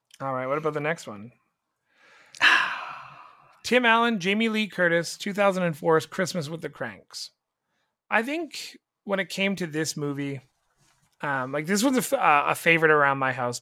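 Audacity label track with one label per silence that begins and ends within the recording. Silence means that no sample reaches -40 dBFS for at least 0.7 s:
1.280000	2.350000	silence
7.270000	8.110000	silence
10.390000	11.210000	silence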